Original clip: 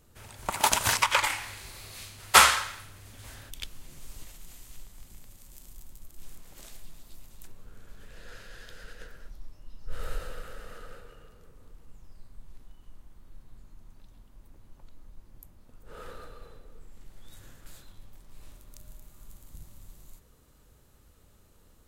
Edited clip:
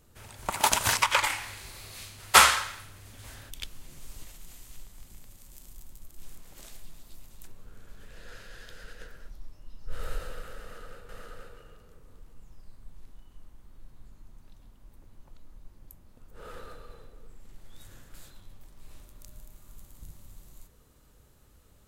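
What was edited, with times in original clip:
0:10.61–0:11.09: repeat, 2 plays

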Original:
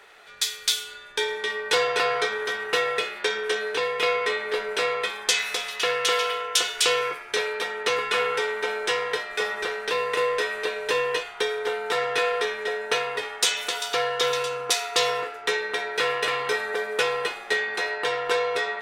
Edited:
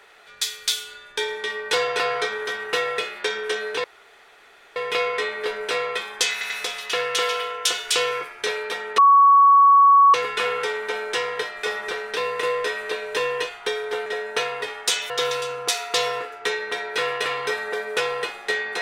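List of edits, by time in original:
0:03.84: splice in room tone 0.92 s
0:05.40: stutter 0.09 s, 3 plays
0:07.88: insert tone 1,120 Hz −9.5 dBFS 1.16 s
0:11.80–0:12.61: remove
0:13.65–0:14.12: remove

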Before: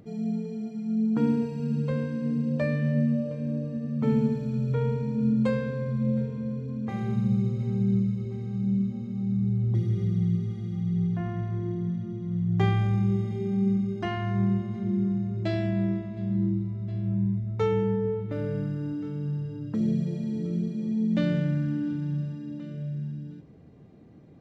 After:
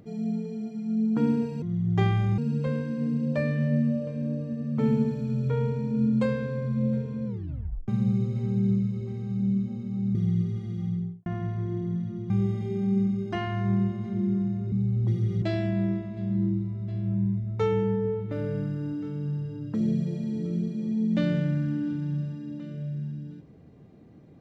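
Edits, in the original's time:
0:06.50: tape stop 0.62 s
0:09.39–0:10.09: move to 0:15.42
0:10.78–0:11.20: fade out and dull
0:12.24–0:13.00: move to 0:01.62

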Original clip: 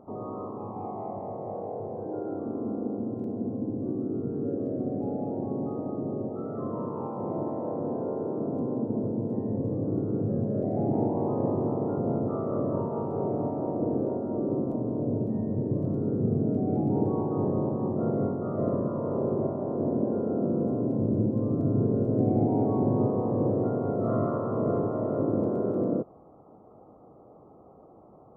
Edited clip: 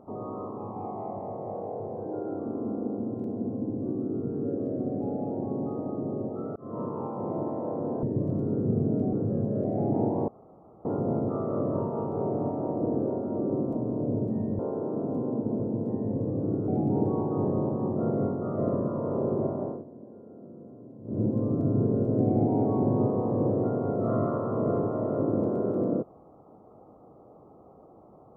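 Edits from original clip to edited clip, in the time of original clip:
0:06.56–0:06.81: fade in
0:08.03–0:10.12: swap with 0:15.58–0:16.68
0:11.27–0:11.84: fill with room tone
0:19.63–0:21.25: duck −19.5 dB, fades 0.21 s

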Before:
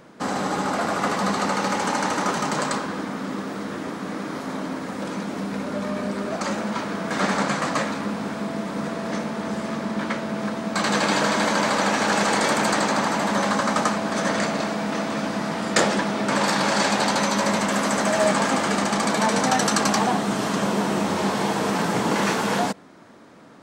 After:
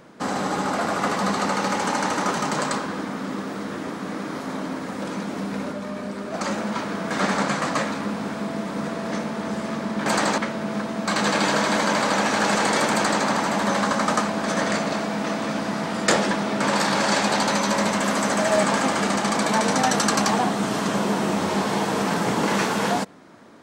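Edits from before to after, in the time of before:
0:05.72–0:06.34: clip gain −4 dB
0:12.61–0:12.93: duplicate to 0:10.06

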